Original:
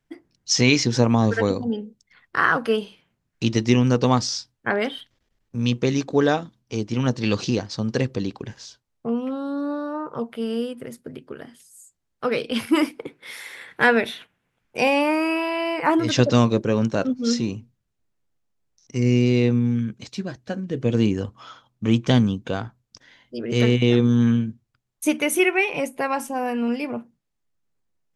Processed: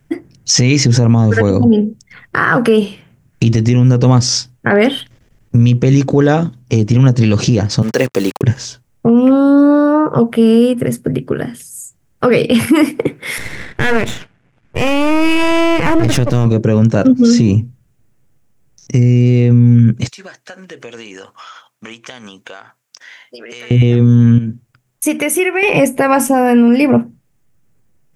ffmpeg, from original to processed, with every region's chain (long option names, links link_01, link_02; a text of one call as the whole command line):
ffmpeg -i in.wav -filter_complex "[0:a]asettb=1/sr,asplit=3[link_01][link_02][link_03];[link_01]atrim=end=7.824[link_04];[link_02]atrim=start=7.82:end=8.43,asetpts=PTS-STARTPTS,afade=type=in:duration=0.004:curve=qsin,afade=type=out:start_time=0.606:duration=0.004:curve=qsin,highpass=420,acrusher=bits=6:mix=0:aa=0.5[link_05];[link_03]atrim=start=8.426[link_06];[link_04][link_05]acrossfade=duration=0.004:curve1=hsin:curve2=qsin[link_07];[link_07][link_06]acrossfade=duration=0.004:curve1=qsin:curve2=hsin,asettb=1/sr,asplit=3[link_08][link_09][link_10];[link_08]atrim=end=13.384[link_11];[link_09]atrim=start=13.38:end=16.46,asetpts=PTS-STARTPTS,afade=type=in:duration=0.004:curve=qsin,afade=type=out:start_time=3.076:duration=0.004:curve=qsin,aeval=exprs='max(val(0),0)':channel_layout=same,adynamicsmooth=sensitivity=7:basefreq=6400[link_12];[link_10]atrim=start=16.456[link_13];[link_11][link_12]acrossfade=duration=0.004:curve1=hsin:curve2=qsin[link_14];[link_14][link_13]acrossfade=duration=0.004:curve1=qsin:curve2=hsin,asettb=1/sr,asplit=3[link_15][link_16][link_17];[link_15]atrim=end=20.084[link_18];[link_16]atrim=start=20.08:end=23.71,asetpts=PTS-STARTPTS,afade=type=in:duration=0.004:curve=qsin,afade=type=out:start_time=3.626:duration=0.004:curve=qsin,highpass=1000,acompressor=threshold=-46dB:ratio=5:attack=3.2:release=140:knee=1:detection=peak[link_19];[link_17]atrim=start=23.706[link_20];[link_18][link_19]acrossfade=duration=0.004:curve1=hsin:curve2=qsin[link_21];[link_21][link_20]acrossfade=duration=0.004:curve1=qsin:curve2=hsin,asettb=1/sr,asplit=3[link_22][link_23][link_24];[link_22]atrim=end=24.384[link_25];[link_23]atrim=start=24.38:end=25.63,asetpts=PTS-STARTPTS,afade=type=in:duration=0.004:curve=qsin,afade=type=out:start_time=1.246:duration=0.004:curve=qsin,lowshelf=frequency=200:gain=-11,acompressor=threshold=-37dB:ratio=2:attack=3.2:release=140:knee=1:detection=peak[link_26];[link_24]atrim=start=25.626[link_27];[link_25][link_26]acrossfade=duration=0.004:curve1=hsin:curve2=qsin[link_28];[link_28][link_27]acrossfade=duration=0.004:curve1=qsin:curve2=hsin,equalizer=frequency=125:width_type=o:width=1:gain=8,equalizer=frequency=1000:width_type=o:width=1:gain=-4,equalizer=frequency=4000:width_type=o:width=1:gain=-8,acompressor=threshold=-21dB:ratio=3,alimiter=level_in=19.5dB:limit=-1dB:release=50:level=0:latency=1,volume=-1dB" out.wav